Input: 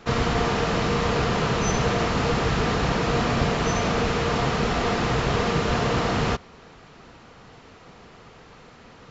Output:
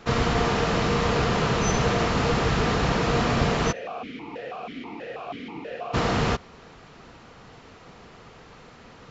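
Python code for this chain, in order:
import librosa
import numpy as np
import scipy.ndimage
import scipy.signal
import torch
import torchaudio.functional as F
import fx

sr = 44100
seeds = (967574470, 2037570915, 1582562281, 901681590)

y = fx.vowel_held(x, sr, hz=6.2, at=(3.71, 5.93), fade=0.02)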